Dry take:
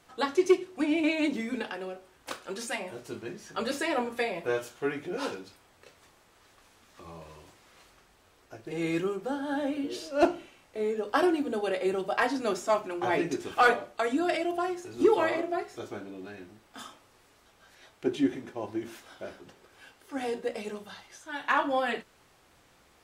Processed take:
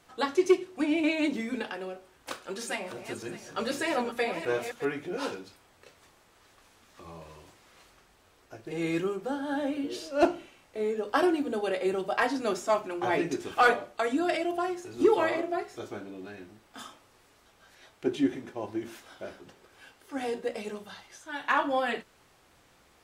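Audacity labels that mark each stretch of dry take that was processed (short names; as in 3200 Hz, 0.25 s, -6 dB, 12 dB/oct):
2.310000	4.850000	regenerating reverse delay 0.306 s, feedback 43%, level -9 dB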